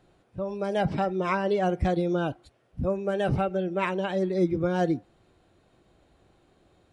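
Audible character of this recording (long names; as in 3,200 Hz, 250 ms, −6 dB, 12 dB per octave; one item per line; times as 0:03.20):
background noise floor −65 dBFS
spectral slope −4.5 dB per octave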